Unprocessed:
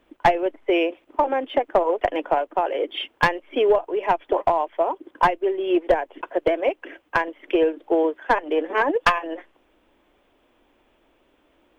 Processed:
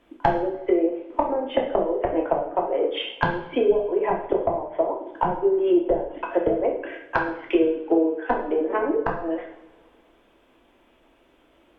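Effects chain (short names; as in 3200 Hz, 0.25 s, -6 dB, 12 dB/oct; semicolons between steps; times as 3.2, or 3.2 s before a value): treble ducked by the level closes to 380 Hz, closed at -17 dBFS; two-slope reverb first 0.66 s, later 2.4 s, from -22 dB, DRR -0.5 dB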